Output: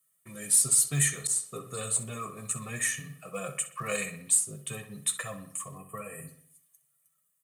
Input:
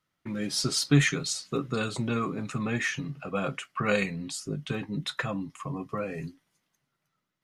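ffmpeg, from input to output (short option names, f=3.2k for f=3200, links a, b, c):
-filter_complex "[0:a]highpass=73,highshelf=f=6.8k:t=q:w=3:g=10,aecho=1:1:1.7:0.71,acrossover=split=650|940[a][b][c];[c]alimiter=limit=-14.5dB:level=0:latency=1:release=250[d];[a][b][d]amix=inputs=3:normalize=0,flanger=delay=5.2:depth=5.7:regen=-30:speed=0.28:shape=triangular,crystalizer=i=4:c=0,acrusher=bits=7:mode=log:mix=0:aa=0.000001,asplit=3[e][f][g];[e]afade=t=out:st=5.77:d=0.02[h];[f]asuperstop=centerf=4900:order=12:qfactor=1.2,afade=t=in:st=5.77:d=0.02,afade=t=out:st=6.27:d=0.02[i];[g]afade=t=in:st=6.27:d=0.02[j];[h][i][j]amix=inputs=3:normalize=0,asplit=2[k][l];[l]adelay=63,lowpass=f=4.3k:p=1,volume=-10.5dB,asplit=2[m][n];[n]adelay=63,lowpass=f=4.3k:p=1,volume=0.53,asplit=2[o][p];[p]adelay=63,lowpass=f=4.3k:p=1,volume=0.53,asplit=2[q][r];[r]adelay=63,lowpass=f=4.3k:p=1,volume=0.53,asplit=2[s][t];[t]adelay=63,lowpass=f=4.3k:p=1,volume=0.53,asplit=2[u][v];[v]adelay=63,lowpass=f=4.3k:p=1,volume=0.53[w];[m][o][q][s][u][w]amix=inputs=6:normalize=0[x];[k][x]amix=inputs=2:normalize=0,asettb=1/sr,asplit=3[y][z][aa];[y]atrim=end=1.274[ab];[z]atrim=start=1.27:end=2.37,asetpts=PTS-STARTPTS,afade=t=in:d=0.004:c=qsin,afade=t=out:st=1.096:d=0.004:c=qsin,adynamicequalizer=threshold=0.0112:dfrequency=1800:dqfactor=0.7:tfrequency=1800:tqfactor=0.7:attack=5:release=100:ratio=0.375:range=2:mode=cutabove:tftype=highshelf[ac];[aa]atrim=start=2.366[ad];[ab][ac]acrossfade=d=0.004:c1=hsin:c2=qsin[ae];[ae][ad]acrossfade=d=0.004:c1=qsin:c2=hsin,volume=-7dB"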